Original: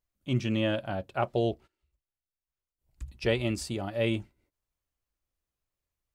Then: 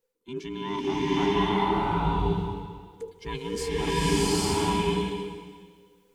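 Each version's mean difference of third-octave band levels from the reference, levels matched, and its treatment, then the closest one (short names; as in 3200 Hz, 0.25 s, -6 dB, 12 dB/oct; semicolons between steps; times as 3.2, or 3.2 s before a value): 12.5 dB: band inversion scrambler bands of 500 Hz; reverse; compressor 10:1, threshold -37 dBFS, peak gain reduction 16 dB; reverse; bloom reverb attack 0.83 s, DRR -11.5 dB; gain +5.5 dB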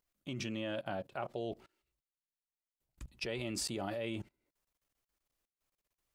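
4.5 dB: bell 78 Hz -15 dB 0.3 oct; level quantiser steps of 22 dB; low shelf 120 Hz -8.5 dB; gain +7 dB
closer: second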